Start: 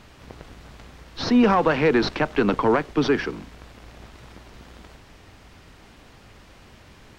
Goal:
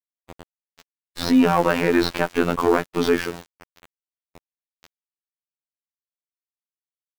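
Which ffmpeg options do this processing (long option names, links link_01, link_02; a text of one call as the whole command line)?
ffmpeg -i in.wav -af "acontrast=83,aeval=exprs='val(0)*gte(abs(val(0)),0.0631)':channel_layout=same,afftfilt=real='hypot(re,im)*cos(PI*b)':imag='0':win_size=2048:overlap=0.75,volume=-2dB" out.wav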